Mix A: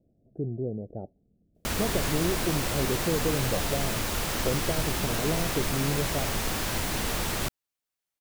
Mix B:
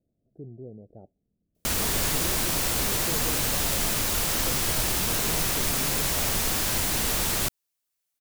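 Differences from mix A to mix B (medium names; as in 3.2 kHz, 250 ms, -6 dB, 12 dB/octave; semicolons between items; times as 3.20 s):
speech -10.0 dB; master: add treble shelf 4.2 kHz +9 dB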